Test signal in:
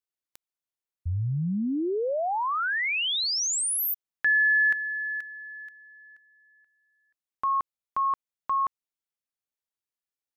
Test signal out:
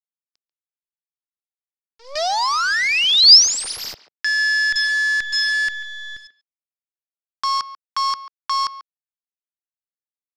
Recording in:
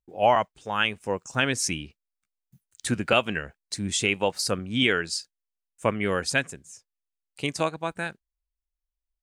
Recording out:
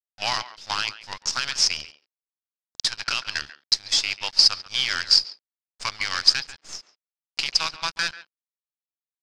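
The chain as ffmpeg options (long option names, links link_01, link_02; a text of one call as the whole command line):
ffmpeg -i in.wav -filter_complex "[0:a]highpass=frequency=1100:width=0.5412,highpass=frequency=1100:width=1.3066,agate=range=-33dB:threshold=-50dB:ratio=3:release=351:detection=peak,dynaudnorm=framelen=230:gausssize=7:maxgain=16dB,alimiter=limit=-7dB:level=0:latency=1:release=66,acompressor=threshold=-25dB:ratio=8:attack=0.71:release=487:knee=1:detection=rms,asoftclip=type=hard:threshold=-24.5dB,acrusher=bits=6:dc=4:mix=0:aa=0.000001,lowpass=frequency=5000:width_type=q:width=6.2,asplit=2[link_01][link_02];[link_02]adelay=140,highpass=300,lowpass=3400,asoftclip=type=hard:threshold=-16.5dB,volume=-15dB[link_03];[link_01][link_03]amix=inputs=2:normalize=0,volume=5.5dB" out.wav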